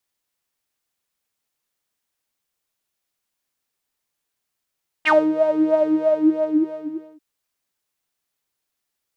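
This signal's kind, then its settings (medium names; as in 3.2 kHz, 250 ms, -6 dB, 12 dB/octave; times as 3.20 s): synth patch with filter wobble D#4, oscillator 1 saw, sub -21.5 dB, filter bandpass, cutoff 360 Hz, Q 9.9, filter envelope 3 oct, filter decay 0.08 s, filter sustain 15%, attack 28 ms, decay 0.21 s, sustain -9 dB, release 1.34 s, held 0.80 s, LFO 3.1 Hz, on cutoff 0.5 oct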